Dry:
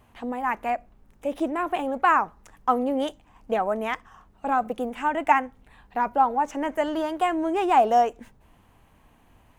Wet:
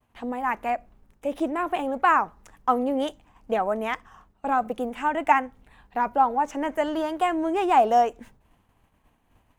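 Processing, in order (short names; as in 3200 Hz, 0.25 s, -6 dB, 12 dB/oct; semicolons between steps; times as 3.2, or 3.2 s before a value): expander -50 dBFS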